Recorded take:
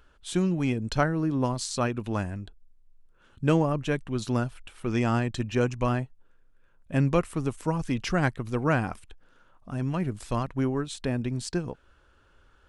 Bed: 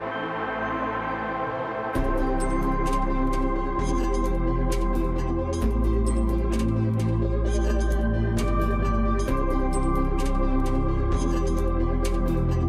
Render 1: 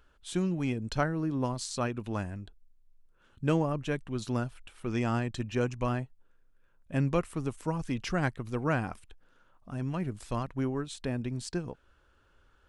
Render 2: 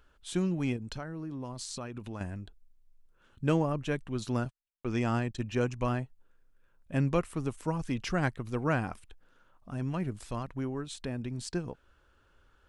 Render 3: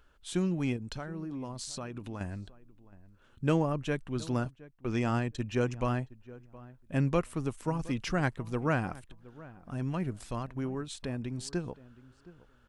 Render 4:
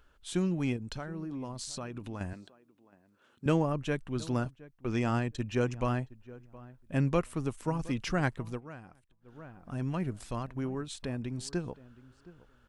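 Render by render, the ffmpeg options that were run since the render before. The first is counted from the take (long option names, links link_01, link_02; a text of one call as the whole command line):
ffmpeg -i in.wav -af "volume=-4.5dB" out.wav
ffmpeg -i in.wav -filter_complex "[0:a]asettb=1/sr,asplit=3[link_01][link_02][link_03];[link_01]atrim=end=0.764[link_04];[link_02]atrim=start=0.76:end=2.21,asetpts=PTS-STARTPTS,afade=type=in:duration=0.004:curve=qsin,afade=type=out:start_time=1.446:duration=0.004:curve=qsin,acompressor=threshold=-36dB:ratio=4:attack=3.2:release=140:knee=1:detection=peak[link_05];[link_03]atrim=start=2.206[link_06];[link_04][link_05]acrossfade=duration=0.004:curve1=hsin:curve2=qsin[link_07];[link_07][link_06]acrossfade=duration=0.004:curve1=qsin:curve2=hsin,asettb=1/sr,asplit=3[link_08][link_09][link_10];[link_08]atrim=end=4.454[link_11];[link_09]atrim=start=4.45:end=5.44,asetpts=PTS-STARTPTS,afade=type=in:duration=0.004:curve=qsin,afade=type=out:start_time=0.986:duration=0.004:curve=qsin,agate=range=-51dB:threshold=-41dB:ratio=16:release=100:detection=peak[link_12];[link_10]atrim=start=5.436[link_13];[link_11][link_12]acrossfade=duration=0.004:curve1=hsin:curve2=qsin[link_14];[link_14][link_13]acrossfade=duration=0.004:curve1=qsin:curve2=hsin,asettb=1/sr,asplit=3[link_15][link_16][link_17];[link_15]atrim=end=10.154[link_18];[link_16]atrim=start=10.15:end=11.39,asetpts=PTS-STARTPTS,afade=type=in:duration=0.004:curve=qsin,afade=type=out:start_time=1.236:duration=0.004:curve=qsin,acompressor=threshold=-35dB:ratio=1.5:attack=3.2:release=140:knee=1:detection=peak[link_19];[link_17]atrim=start=11.386[link_20];[link_18][link_19]acrossfade=duration=0.004:curve1=hsin:curve2=qsin[link_21];[link_21][link_20]acrossfade=duration=0.004:curve1=qsin:curve2=hsin" out.wav
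ffmpeg -i in.wav -filter_complex "[0:a]asplit=2[link_01][link_02];[link_02]adelay=718,lowpass=frequency=1500:poles=1,volume=-19dB,asplit=2[link_03][link_04];[link_04]adelay=718,lowpass=frequency=1500:poles=1,volume=0.18[link_05];[link_01][link_03][link_05]amix=inputs=3:normalize=0" out.wav
ffmpeg -i in.wav -filter_complex "[0:a]asettb=1/sr,asplit=3[link_01][link_02][link_03];[link_01]atrim=end=2.334[link_04];[link_02]atrim=start=2.33:end=3.46,asetpts=PTS-STARTPTS,afade=type=in:duration=0.004:curve=qsin,afade=type=out:start_time=1.126:duration=0.004:curve=qsin,highpass=250[link_05];[link_03]atrim=start=3.456[link_06];[link_04][link_05]acrossfade=duration=0.004:curve1=hsin:curve2=qsin[link_07];[link_07][link_06]acrossfade=duration=0.004:curve1=qsin:curve2=hsin,asplit=3[link_08][link_09][link_10];[link_08]atrim=end=8.61,asetpts=PTS-STARTPTS,afade=type=out:start_time=8.44:duration=0.17:curve=qsin:silence=0.133352[link_11];[link_09]atrim=start=8.61:end=9.21,asetpts=PTS-STARTPTS,volume=-17.5dB[link_12];[link_10]atrim=start=9.21,asetpts=PTS-STARTPTS,afade=type=in:duration=0.17:curve=qsin:silence=0.133352[link_13];[link_11][link_12][link_13]concat=n=3:v=0:a=1" out.wav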